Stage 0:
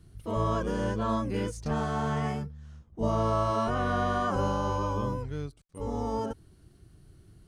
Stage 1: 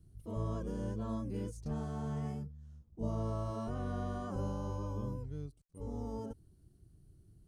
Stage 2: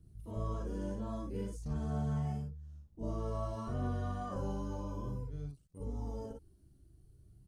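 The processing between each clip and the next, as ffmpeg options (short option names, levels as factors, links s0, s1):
-af "equalizer=f=1900:w=0.33:g=-14,volume=0.531"
-filter_complex "[0:a]aphaser=in_gain=1:out_gain=1:delay=3.7:decay=0.35:speed=0.52:type=triangular,asplit=2[s0][s1];[s1]aecho=0:1:41|56:0.531|0.596[s2];[s0][s2]amix=inputs=2:normalize=0,volume=0.708"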